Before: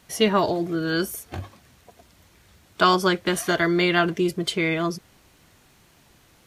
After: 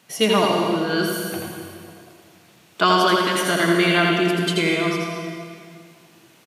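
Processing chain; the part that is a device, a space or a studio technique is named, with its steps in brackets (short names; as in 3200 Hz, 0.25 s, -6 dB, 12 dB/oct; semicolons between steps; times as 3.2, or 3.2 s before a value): PA in a hall (HPF 130 Hz 24 dB/oct; bell 2700 Hz +4 dB 0.29 oct; echo 83 ms -4 dB; reverb RT60 2.1 s, pre-delay 91 ms, DRR 2.5 dB)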